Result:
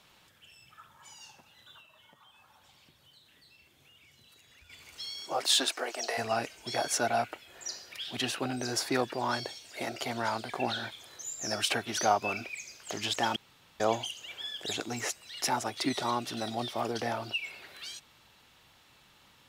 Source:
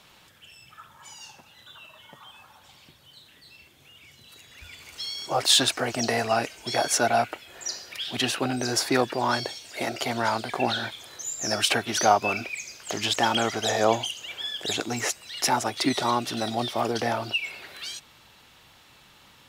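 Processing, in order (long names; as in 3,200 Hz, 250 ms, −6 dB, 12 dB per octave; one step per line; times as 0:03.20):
0:01.80–0:04.70: downward compressor 5 to 1, threshold −50 dBFS, peak gain reduction 8.5 dB
0:05.21–0:06.17: high-pass filter 150 Hz → 490 Hz 24 dB per octave
0:13.36–0:13.80: fill with room tone
level −6.5 dB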